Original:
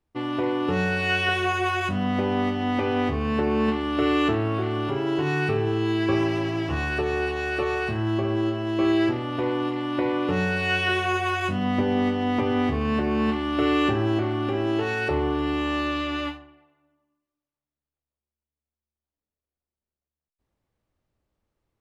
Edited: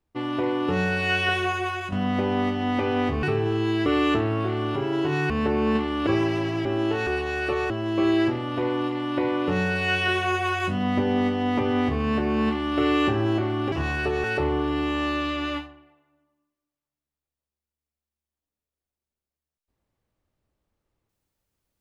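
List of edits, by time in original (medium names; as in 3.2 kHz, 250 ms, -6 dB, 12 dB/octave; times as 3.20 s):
1.35–1.92 s: fade out, to -7.5 dB
3.23–4.00 s: swap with 5.44–6.07 s
6.65–7.17 s: swap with 14.53–14.95 s
7.80–8.51 s: delete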